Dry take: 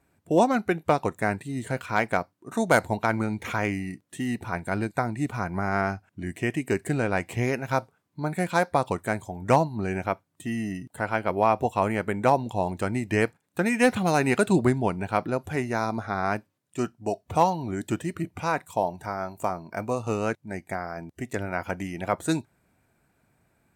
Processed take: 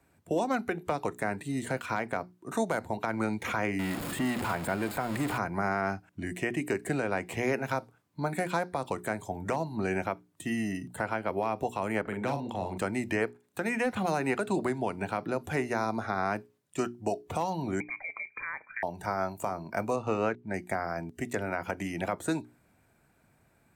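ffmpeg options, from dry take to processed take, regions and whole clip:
ffmpeg -i in.wav -filter_complex "[0:a]asettb=1/sr,asplit=3[link_01][link_02][link_03];[link_01]atrim=end=3.794[link_04];[link_02]atrim=start=3.79:end=5.38,asetpts=PTS-STARTPTS,afade=type=in:duration=0.004:curve=qsin,afade=type=out:start_time=1.586:duration=0.004:curve=qsin,aeval=exprs='val(0)+0.5*0.0355*sgn(val(0))':channel_layout=same,bandreject=frequency=5900:width=5.5[link_05];[link_03]atrim=start=5.376[link_06];[link_04][link_05]acrossfade=duration=0.004:curve1=hsin:curve2=qsin[link_07];[link_07][link_06]acrossfade=duration=0.004:curve1=qsin:curve2=hsin,asettb=1/sr,asplit=3[link_08][link_09][link_10];[link_08]atrim=end=12.014[link_11];[link_09]atrim=start=12.01:end=12.78,asetpts=PTS-STARTPTS,afade=type=in:duration=0.004:curve=qsin,afade=type=out:start_time=0.766:duration=0.004:curve=qsin,bass=frequency=250:gain=-4,treble=frequency=4000:gain=-11,acrossover=split=210|3000[link_12][link_13][link_14];[link_13]acompressor=threshold=-33dB:ratio=4:attack=3.2:release=140:knee=2.83:detection=peak[link_15];[link_12][link_15][link_14]amix=inputs=3:normalize=0,asplit=2[link_16][link_17];[link_17]adelay=43,volume=-6dB[link_18];[link_16][link_18]amix=inputs=2:normalize=0,atrim=end_sample=33957[link_19];[link_10]atrim=start=12.776[link_20];[link_11][link_19]acrossfade=duration=0.004:curve1=hsin:curve2=qsin[link_21];[link_21][link_20]acrossfade=duration=0.004:curve1=qsin:curve2=hsin,asettb=1/sr,asplit=3[link_22][link_23][link_24];[link_22]atrim=end=17.804[link_25];[link_23]atrim=start=17.8:end=18.83,asetpts=PTS-STARTPTS,afade=type=in:duration=0.004:curve=qsin,afade=type=out:start_time=1.026:duration=0.004:curve=qsin,acompressor=threshold=-36dB:ratio=4:attack=3.2:release=140:knee=1:detection=peak,lowpass=frequency=2100:width_type=q:width=0.5098,lowpass=frequency=2100:width_type=q:width=0.6013,lowpass=frequency=2100:width_type=q:width=0.9,lowpass=frequency=2100:width_type=q:width=2.563,afreqshift=-2500[link_26];[link_24]atrim=start=18.826[link_27];[link_25][link_26]acrossfade=duration=0.004:curve1=hsin:curve2=qsin[link_28];[link_28][link_27]acrossfade=duration=0.004:curve1=qsin:curve2=hsin,asettb=1/sr,asplit=3[link_29][link_30][link_31];[link_29]atrim=end=19.964[link_32];[link_30]atrim=start=19.96:end=20.54,asetpts=PTS-STARTPTS,afade=type=in:duration=0.004:curve=qsin,afade=type=out:start_time=0.576:duration=0.004:curve=qsin,lowpass=2400,aemphasis=mode=production:type=50fm[link_33];[link_31]atrim=start=20.536[link_34];[link_32][link_33]acrossfade=duration=0.004:curve1=hsin:curve2=qsin[link_35];[link_35][link_34]acrossfade=duration=0.004:curve1=qsin:curve2=hsin,acrossover=split=160|360|2100[link_36][link_37][link_38][link_39];[link_36]acompressor=threshold=-44dB:ratio=4[link_40];[link_37]acompressor=threshold=-33dB:ratio=4[link_41];[link_38]acompressor=threshold=-24dB:ratio=4[link_42];[link_39]acompressor=threshold=-41dB:ratio=4[link_43];[link_40][link_41][link_42][link_43]amix=inputs=4:normalize=0,alimiter=limit=-20dB:level=0:latency=1:release=177,bandreject=frequency=60:width_type=h:width=6,bandreject=frequency=120:width_type=h:width=6,bandreject=frequency=180:width_type=h:width=6,bandreject=frequency=240:width_type=h:width=6,bandreject=frequency=300:width_type=h:width=6,bandreject=frequency=360:width_type=h:width=6,bandreject=frequency=420:width_type=h:width=6,volume=1.5dB" out.wav

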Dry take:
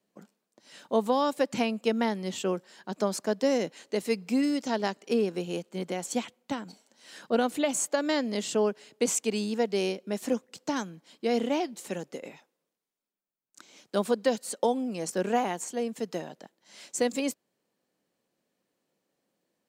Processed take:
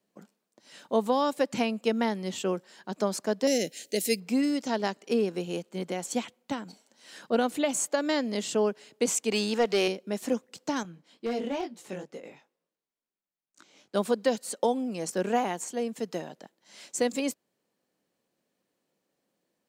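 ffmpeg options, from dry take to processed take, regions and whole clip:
ffmpeg -i in.wav -filter_complex "[0:a]asettb=1/sr,asplit=3[link_01][link_02][link_03];[link_01]atrim=end=3.474[link_04];[link_02]atrim=start=3.47:end=4.2,asetpts=PTS-STARTPTS,afade=type=in:duration=0.004:curve=qsin,afade=type=out:start_time=0.726:duration=0.004:curve=qsin,asuperstop=centerf=1100:order=4:qfactor=1,aemphasis=mode=production:type=75kf[link_05];[link_03]atrim=start=4.196[link_06];[link_04][link_05]acrossfade=duration=0.004:curve1=hsin:curve2=qsin[link_07];[link_07][link_06]acrossfade=duration=0.004:curve1=qsin:curve2=hsin,asettb=1/sr,asplit=3[link_08][link_09][link_10];[link_08]atrim=end=9.324[link_11];[link_09]atrim=start=9.32:end=9.88,asetpts=PTS-STARTPTS,afade=type=in:duration=0.004:curve=qsin,afade=type=out:start_time=0.556:duration=0.004:curve=qsin,asplit=2[link_12][link_13];[link_13]highpass=frequency=720:poles=1,volume=15dB,asoftclip=type=tanh:threshold=-15dB[link_14];[link_12][link_14]amix=inputs=2:normalize=0,lowpass=frequency=5700:poles=1,volume=-6dB,acompressor=mode=upward:threshold=-28dB:ratio=2.5:attack=3.2:release=140:knee=2.83:detection=peak[link_15];[link_10]atrim=start=9.876[link_16];[link_11][link_15]acrossfade=duration=0.004:curve1=hsin:curve2=qsin[link_17];[link_17][link_16]acrossfade=duration=0.004:curve1=qsin:curve2=hsin,asettb=1/sr,asplit=3[link_18][link_19][link_20];[link_18]atrim=end=10.834[link_21];[link_19]atrim=start=10.83:end=13.95,asetpts=PTS-STARTPTS,afade=type=in:duration=0.004:curve=qsin,afade=type=out:start_time=3.116:duration=0.004:curve=qsin,highshelf=frequency=5900:gain=-7,flanger=delay=17:depth=5.2:speed=2.2,volume=24.5dB,asoftclip=hard,volume=-24.5dB[link_22];[link_20]atrim=start=13.946[link_23];[link_21][link_22]acrossfade=duration=0.004:curve1=hsin:curve2=qsin[link_24];[link_24][link_23]acrossfade=duration=0.004:curve1=qsin:curve2=hsin" out.wav

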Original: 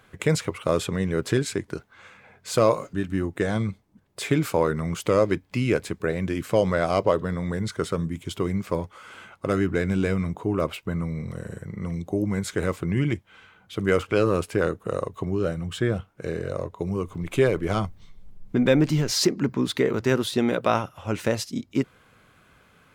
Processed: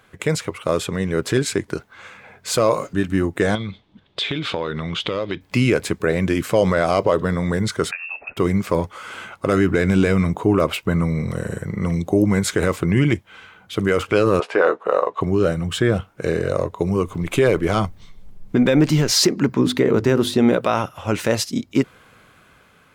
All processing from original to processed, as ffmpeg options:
ffmpeg -i in.wav -filter_complex "[0:a]asettb=1/sr,asplit=3[link_01][link_02][link_03];[link_01]atrim=end=3.554[link_04];[link_02]atrim=start=3.55:end=5.41,asetpts=PTS-STARTPTS,afade=type=in:duration=0.004:curve=qsin,afade=type=out:start_time=1.856:duration=0.004:curve=qsin,lowpass=frequency=3500:width_type=q:width=5.3,acompressor=threshold=-31dB:ratio=4:attack=3.2:release=140:knee=1:detection=peak[link_05];[link_03]atrim=start=5.406[link_06];[link_04][link_05]acrossfade=duration=0.004:curve1=hsin:curve2=qsin[link_07];[link_07][link_06]acrossfade=duration=0.004:curve1=qsin:curve2=hsin,asettb=1/sr,asplit=3[link_08][link_09][link_10];[link_08]atrim=end=7.914[link_11];[link_09]atrim=start=7.91:end=8.37,asetpts=PTS-STARTPTS,afade=type=in:duration=0.004:curve=qsin,afade=type=out:start_time=0.456:duration=0.004:curve=qsin,highpass=frequency=250:width=0.5412,highpass=frequency=250:width=1.3066,acompressor=threshold=-35dB:ratio=3:attack=3.2:release=140:knee=1:detection=peak,lowpass=frequency=2500:width_type=q:width=0.5098,lowpass=frequency=2500:width_type=q:width=0.6013,lowpass=frequency=2500:width_type=q:width=0.9,lowpass=frequency=2500:width_type=q:width=2.563,afreqshift=-2900[link_12];[link_10]atrim=start=8.366[link_13];[link_11][link_12]acrossfade=duration=0.004:curve1=hsin:curve2=qsin[link_14];[link_14][link_13]acrossfade=duration=0.004:curve1=qsin:curve2=hsin,asettb=1/sr,asplit=3[link_15][link_16][link_17];[link_15]atrim=end=14.404[link_18];[link_16]atrim=start=14.4:end=15.21,asetpts=PTS-STARTPTS,afade=type=in:duration=0.004:curve=qsin,afade=type=out:start_time=0.806:duration=0.004:curve=qsin,highpass=440,lowpass=3600,equalizer=frequency=820:width_type=o:width=1.7:gain=8,asplit=2[link_19][link_20];[link_20]adelay=16,volume=-9dB[link_21];[link_19][link_21]amix=inputs=2:normalize=0,atrim=end_sample=35721[link_22];[link_17]atrim=start=15.206[link_23];[link_18][link_22]acrossfade=duration=0.004:curve1=hsin:curve2=qsin[link_24];[link_24][link_23]acrossfade=duration=0.004:curve1=qsin:curve2=hsin,asettb=1/sr,asplit=3[link_25][link_26][link_27];[link_25]atrim=end=19.594[link_28];[link_26]atrim=start=19.59:end=20.57,asetpts=PTS-STARTPTS,afade=type=in:duration=0.004:curve=qsin,afade=type=out:start_time=0.976:duration=0.004:curve=qsin,tiltshelf=frequency=800:gain=4,bandreject=frequency=50:width_type=h:width=6,bandreject=frequency=100:width_type=h:width=6,bandreject=frequency=150:width_type=h:width=6,bandreject=frequency=200:width_type=h:width=6,bandreject=frequency=250:width_type=h:width=6,bandreject=frequency=300:width_type=h:width=6,bandreject=frequency=350:width_type=h:width=6,bandreject=frequency=400:width_type=h:width=6,bandreject=frequency=450:width_type=h:width=6[link_29];[link_27]atrim=start=20.566[link_30];[link_28][link_29]acrossfade=duration=0.004:curve1=hsin:curve2=qsin[link_31];[link_31][link_30]acrossfade=duration=0.004:curve1=qsin:curve2=hsin,dynaudnorm=framelen=370:gausssize=7:maxgain=11.5dB,lowshelf=frequency=230:gain=-3.5,alimiter=level_in=7.5dB:limit=-1dB:release=50:level=0:latency=1,volume=-5dB" out.wav

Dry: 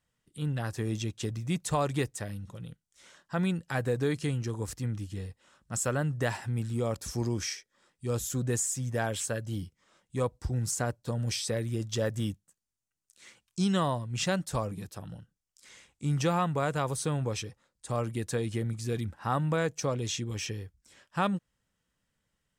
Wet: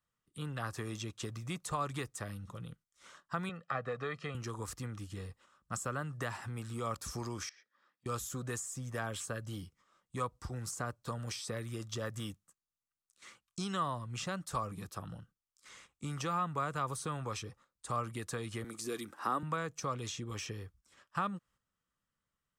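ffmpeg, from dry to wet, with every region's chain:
ffmpeg -i in.wav -filter_complex "[0:a]asettb=1/sr,asplit=3[link_01][link_02][link_03];[link_01]atrim=end=3.494[link_04];[link_02]atrim=start=3.49:end=4.35,asetpts=PTS-STARTPTS,afade=type=in:duration=0.004:curve=qsin,afade=type=out:start_time=0.856:duration=0.004:curve=qsin,aecho=1:1:1.6:0.7,atrim=end_sample=37926,asoftclip=type=hard:threshold=-19dB,highpass=230,lowpass=2800[link_05];[link_03]atrim=start=4.346[link_06];[link_04][link_05]acrossfade=duration=0.004:curve1=hsin:curve2=qsin[link_07];[link_07][link_06]acrossfade=duration=0.004:curve1=qsin:curve2=hsin,asettb=1/sr,asplit=3[link_08][link_09][link_10];[link_08]atrim=end=7.494[link_11];[link_09]atrim=start=7.49:end=8.06,asetpts=PTS-STARTPTS,afade=type=in:duration=0.004:curve=qsin,afade=type=out:start_time=0.566:duration=0.004:curve=qsin,acompressor=threshold=-50dB:ratio=10:attack=3.2:release=140:knee=1:detection=peak,highpass=frequency=150:width=0.5412,highpass=frequency=150:width=1.3066,equalizer=frequency=160:width_type=q:width=4:gain=-9,equalizer=frequency=400:width_type=q:width=4:gain=-6,equalizer=frequency=1700:width_type=q:width=4:gain=7,lowpass=frequency=5400:width=0.5412,lowpass=frequency=5400:width=1.3066[link_12];[link_10]atrim=start=8.056[link_13];[link_11][link_12]acrossfade=duration=0.004:curve1=hsin:curve2=qsin[link_14];[link_14][link_13]acrossfade=duration=0.004:curve1=qsin:curve2=hsin,asettb=1/sr,asplit=3[link_15][link_16][link_17];[link_15]atrim=end=18.644[link_18];[link_16]atrim=start=18.64:end=19.43,asetpts=PTS-STARTPTS,afade=type=in:duration=0.004:curve=qsin,afade=type=out:start_time=0.786:duration=0.004:curve=qsin,highshelf=frequency=4900:gain=9.5,acompressor=mode=upward:threshold=-45dB:ratio=2.5:attack=3.2:release=140:knee=2.83:detection=peak,highpass=frequency=330:width_type=q:width=2[link_19];[link_17]atrim=start=19.426[link_20];[link_18][link_19]acrossfade=duration=0.004:curve1=hsin:curve2=qsin[link_21];[link_21][link_20]acrossfade=duration=0.004:curve1=qsin:curve2=hsin,agate=range=-8dB:threshold=-57dB:ratio=16:detection=peak,acrossover=split=380|810[link_22][link_23][link_24];[link_22]acompressor=threshold=-39dB:ratio=4[link_25];[link_23]acompressor=threshold=-45dB:ratio=4[link_26];[link_24]acompressor=threshold=-39dB:ratio=4[link_27];[link_25][link_26][link_27]amix=inputs=3:normalize=0,equalizer=frequency=1200:width_type=o:width=0.38:gain=11.5,volume=-2dB" out.wav

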